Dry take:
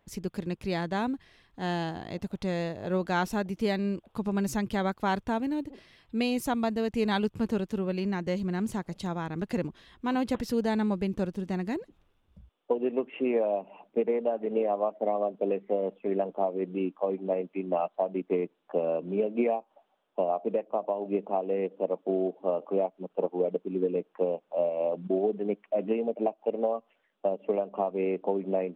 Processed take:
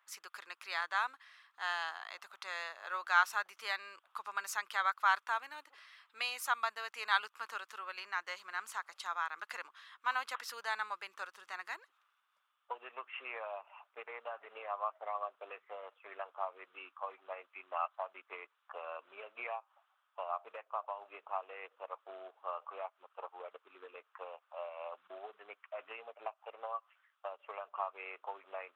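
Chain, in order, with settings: ladder high-pass 1.1 kHz, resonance 60%; trim +8 dB

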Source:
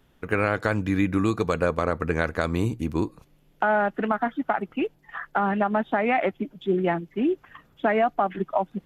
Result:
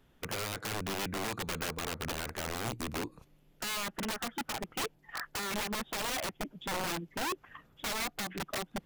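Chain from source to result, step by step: compression 2.5:1, threshold -27 dBFS, peak gain reduction 7 dB; integer overflow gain 25.5 dB; trim -4 dB

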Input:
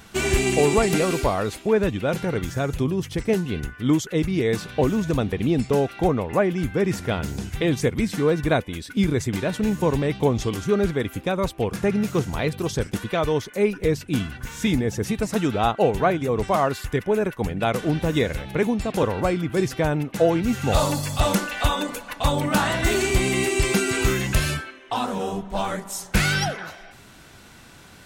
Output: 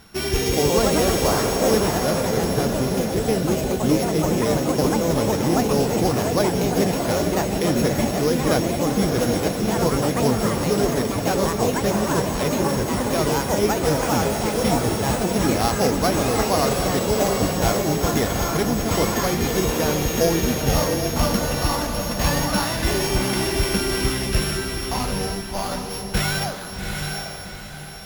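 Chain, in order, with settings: sorted samples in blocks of 8 samples; echo that smears into a reverb 753 ms, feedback 43%, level -4 dB; ever faster or slower copies 210 ms, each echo +3 st, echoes 3; trim -2 dB

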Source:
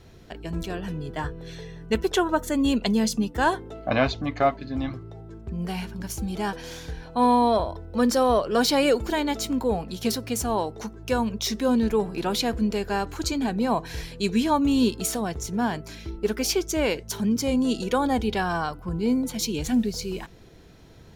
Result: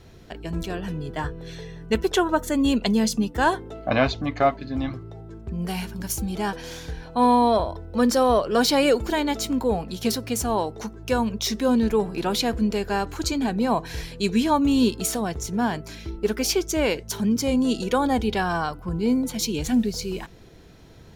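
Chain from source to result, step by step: 5.67–6.22 s: treble shelf 6.9 kHz +8.5 dB; trim +1.5 dB

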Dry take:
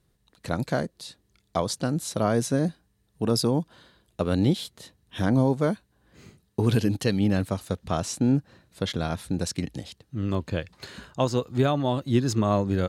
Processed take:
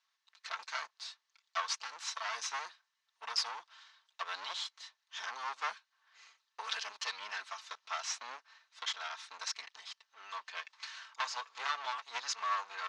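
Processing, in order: comb filter that takes the minimum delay 4.5 ms; elliptic band-pass 1–6.1 kHz, stop band 80 dB

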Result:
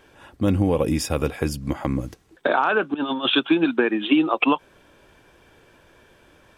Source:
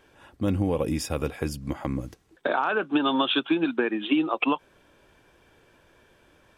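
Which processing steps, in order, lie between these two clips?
2.94–3.35 s: compressor with a negative ratio -28 dBFS, ratio -0.5; trim +5 dB

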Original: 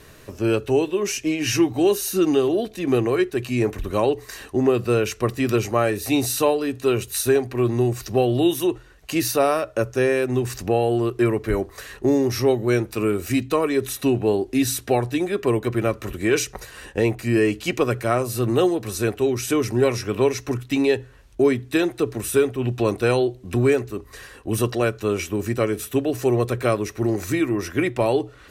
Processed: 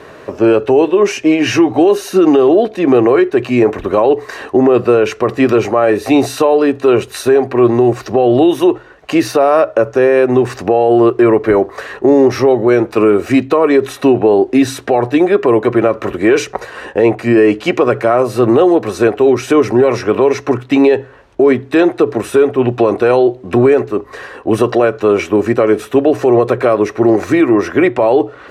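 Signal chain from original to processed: band-pass filter 700 Hz, Q 0.78; loudness maximiser +18.5 dB; trim -1 dB

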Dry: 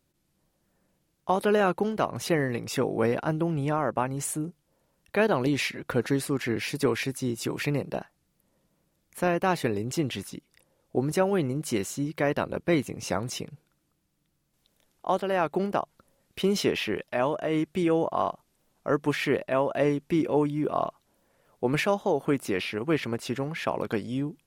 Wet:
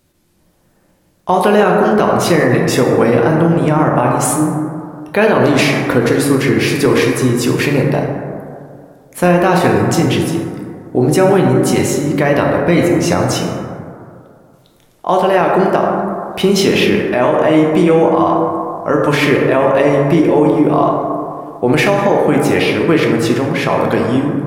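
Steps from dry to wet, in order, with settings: plate-style reverb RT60 2.3 s, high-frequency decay 0.3×, DRR 0 dB; loudness maximiser +14 dB; trim -1 dB

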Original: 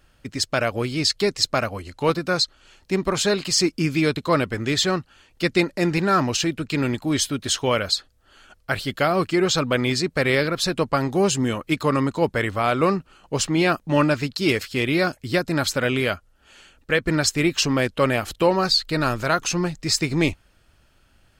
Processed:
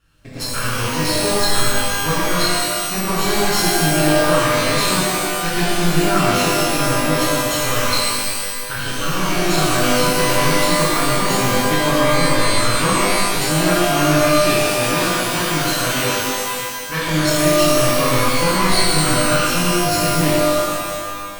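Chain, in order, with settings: comb filter that takes the minimum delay 0.73 ms; 14.33–17.10 s: bass shelf 71 Hz -10 dB; pitch-shifted reverb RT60 1.9 s, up +12 st, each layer -2 dB, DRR -8.5 dB; trim -6 dB

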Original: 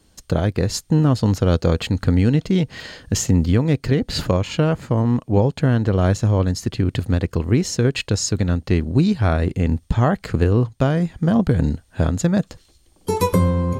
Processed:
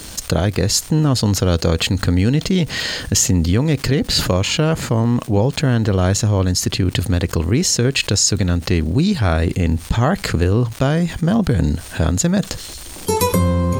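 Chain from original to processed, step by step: treble shelf 2.9 kHz +9 dB; crackle 390 per s -42 dBFS; level flattener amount 50%; trim -1 dB

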